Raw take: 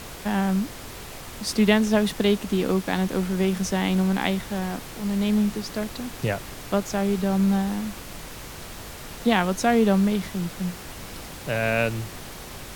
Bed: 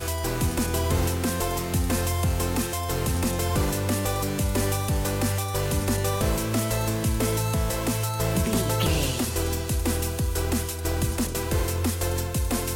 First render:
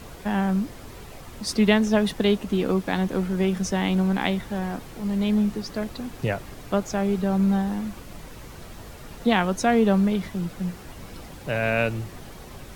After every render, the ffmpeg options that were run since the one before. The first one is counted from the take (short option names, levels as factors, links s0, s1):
-af "afftdn=nr=8:nf=-39"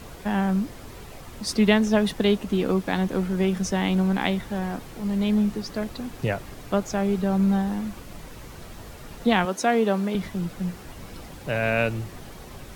-filter_complex "[0:a]asettb=1/sr,asplit=3[s0][s1][s2];[s0]atrim=end=9.454[s3];[s1]atrim=start=9.45:end=10.15,asetpts=PTS-STARTPTS,afade=t=in:d=0.004:c=qsin,afade=t=out:st=0.696:d=0.004:c=qsin,highpass=260[s4];[s2]atrim=start=10.146[s5];[s3][s4]acrossfade=d=0.004:c1=hsin:c2=qsin[s6];[s6][s5]acrossfade=d=0.004:c1=qsin:c2=hsin"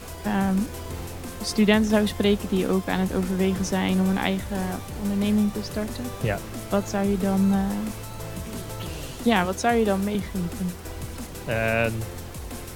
-filter_complex "[1:a]volume=0.282[s0];[0:a][s0]amix=inputs=2:normalize=0"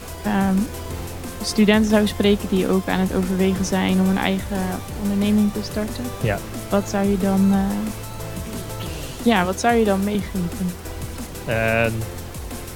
-af "volume=1.58,alimiter=limit=0.708:level=0:latency=1"